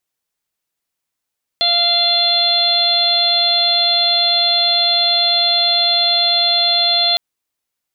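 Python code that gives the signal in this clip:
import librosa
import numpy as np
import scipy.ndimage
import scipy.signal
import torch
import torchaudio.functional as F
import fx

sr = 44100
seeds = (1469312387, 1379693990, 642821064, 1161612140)

y = fx.additive_steady(sr, length_s=5.56, hz=693.0, level_db=-20.5, upper_db=(-12.0, -9, -10.0, 5, 5.5))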